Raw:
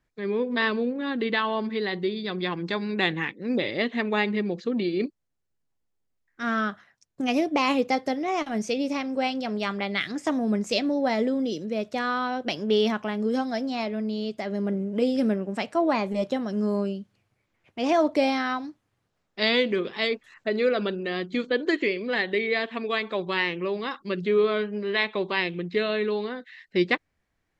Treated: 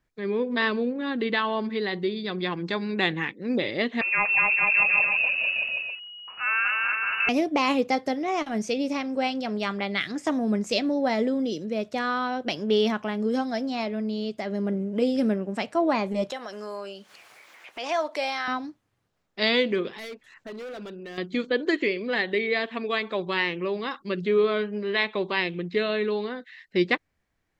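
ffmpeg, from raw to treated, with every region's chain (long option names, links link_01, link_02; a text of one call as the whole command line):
ffmpeg -i in.wav -filter_complex "[0:a]asettb=1/sr,asplit=3[link_01][link_02][link_03];[link_01]atrim=end=4.014[link_04];[link_02]atrim=start=4.01:end=7.29,asetpts=PTS-STARTPTS,afade=type=in:duration=0.004:curve=qsin,afade=type=out:start_time=3.276:duration=0.004:curve=qsin,aeval=exprs='val(0)+0.5*0.0141*sgn(val(0))':channel_layout=same,lowpass=frequency=2500:width_type=q:width=0.5098,lowpass=frequency=2500:width_type=q:width=0.6013,lowpass=frequency=2500:width_type=q:width=0.9,lowpass=frequency=2500:width_type=q:width=2.563,afreqshift=-2900,aecho=1:1:240|444|617.4|764.8|890.1:0.794|0.631|0.501|0.398|0.316,atrim=end_sample=144648[link_05];[link_03]atrim=start=7.286[link_06];[link_04][link_05]acrossfade=duration=0.004:curve1=hsin:curve2=qsin[link_07];[link_07][link_06]acrossfade=duration=0.004:curve1=qsin:curve2=hsin,asettb=1/sr,asplit=3[link_08][link_09][link_10];[link_08]atrim=end=16.304[link_11];[link_09]atrim=start=16.3:end=18.48,asetpts=PTS-STARTPTS,afade=type=in:duration=0.004:curve=qsin,afade=type=out:start_time=2.176:duration=0.004:curve=qsin,highpass=760,acompressor=mode=upward:threshold=-29dB:ratio=2.5:attack=3.2:release=140:knee=2.83:detection=peak[link_12];[link_10]atrim=start=18.476[link_13];[link_11][link_12]acrossfade=duration=0.004:curve1=hsin:curve2=qsin[link_14];[link_14][link_13]acrossfade=duration=0.004:curve1=qsin:curve2=hsin,asettb=1/sr,asplit=3[link_15][link_16][link_17];[link_15]atrim=end=19.924[link_18];[link_16]atrim=start=19.92:end=21.18,asetpts=PTS-STARTPTS,afade=type=in:duration=0.004:curve=qsin,afade=type=out:start_time=1.256:duration=0.004:curve=qsin,bandreject=frequency=1200:width=15,asoftclip=type=hard:threshold=-24.5dB,acompressor=threshold=-38dB:ratio=4:attack=3.2:release=140:knee=1:detection=peak[link_19];[link_17]atrim=start=21.176[link_20];[link_18][link_19]acrossfade=duration=0.004:curve1=hsin:curve2=qsin[link_21];[link_21][link_20]acrossfade=duration=0.004:curve1=qsin:curve2=hsin" out.wav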